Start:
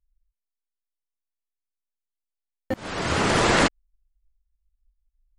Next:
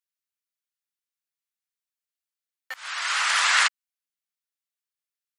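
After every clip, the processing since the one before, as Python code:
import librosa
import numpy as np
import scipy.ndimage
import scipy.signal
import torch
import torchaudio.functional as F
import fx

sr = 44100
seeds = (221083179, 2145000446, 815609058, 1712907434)

y = scipy.signal.sosfilt(scipy.signal.butter(4, 1200.0, 'highpass', fs=sr, output='sos'), x)
y = y * librosa.db_to_amplitude(3.5)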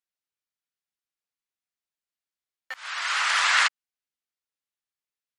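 y = fx.high_shelf(x, sr, hz=9100.0, db=-11.0)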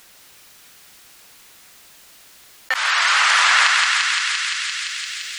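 y = fx.echo_thinned(x, sr, ms=172, feedback_pct=59, hz=1000.0, wet_db=-6.5)
y = fx.env_flatten(y, sr, amount_pct=70)
y = y * librosa.db_to_amplitude(4.5)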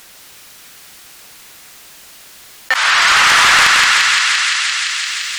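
y = fx.echo_split(x, sr, split_hz=2600.0, low_ms=379, high_ms=97, feedback_pct=52, wet_db=-12.5)
y = fx.fold_sine(y, sr, drive_db=8, ceiling_db=-0.5)
y = y * librosa.db_to_amplitude(-4.5)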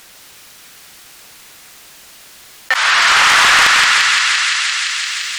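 y = fx.doppler_dist(x, sr, depth_ms=0.42)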